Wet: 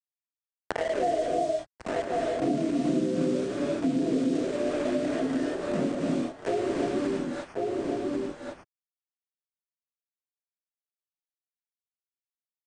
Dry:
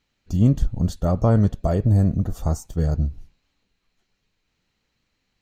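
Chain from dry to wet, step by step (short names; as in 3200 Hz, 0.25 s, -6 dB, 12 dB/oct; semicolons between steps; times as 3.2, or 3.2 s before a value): spectrum mirrored in octaves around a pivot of 640 Hz; HPF 340 Hz 24 dB/oct; vocal rider within 5 dB 2 s; brick-wall FIR low-pass 1700 Hz; sample gate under -37.5 dBFS; outdoor echo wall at 80 m, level -9 dB; non-linear reverb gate 0.17 s rising, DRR -2 dB; speed mistake 78 rpm record played at 33 rpm; three-band squash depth 100%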